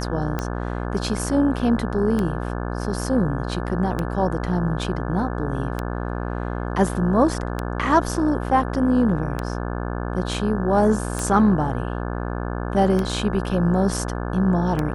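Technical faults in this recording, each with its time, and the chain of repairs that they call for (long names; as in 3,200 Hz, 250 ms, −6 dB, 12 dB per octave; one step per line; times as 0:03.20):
mains buzz 60 Hz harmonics 29 −27 dBFS
scratch tick 33 1/3 rpm −11 dBFS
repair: click removal
hum removal 60 Hz, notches 29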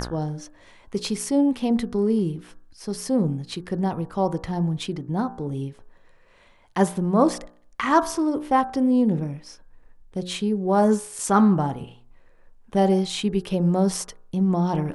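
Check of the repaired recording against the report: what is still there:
none of them is left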